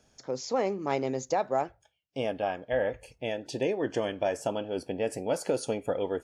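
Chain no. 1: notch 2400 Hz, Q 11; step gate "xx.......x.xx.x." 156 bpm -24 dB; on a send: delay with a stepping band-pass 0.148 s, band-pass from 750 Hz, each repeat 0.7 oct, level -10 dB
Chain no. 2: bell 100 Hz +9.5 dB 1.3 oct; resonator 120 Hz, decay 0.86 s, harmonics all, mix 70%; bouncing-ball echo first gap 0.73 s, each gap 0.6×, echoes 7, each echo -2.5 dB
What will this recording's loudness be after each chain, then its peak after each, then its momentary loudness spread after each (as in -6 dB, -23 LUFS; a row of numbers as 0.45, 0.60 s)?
-33.5, -36.5 LUFS; -15.0, -20.0 dBFS; 11, 3 LU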